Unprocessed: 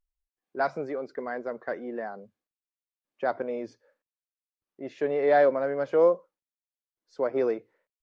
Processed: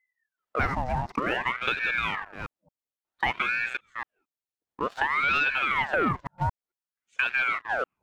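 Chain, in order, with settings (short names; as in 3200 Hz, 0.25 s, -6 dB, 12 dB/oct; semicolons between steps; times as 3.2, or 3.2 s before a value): reverse delay 0.224 s, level -9 dB; low shelf 240 Hz +8 dB; sample leveller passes 2; compressor, threshold -25 dBFS, peak gain reduction 12.5 dB; dynamic EQ 1400 Hz, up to +4 dB, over -47 dBFS, Q 1.5; ring modulator with a swept carrier 1200 Hz, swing 70%, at 0.55 Hz; gain +3.5 dB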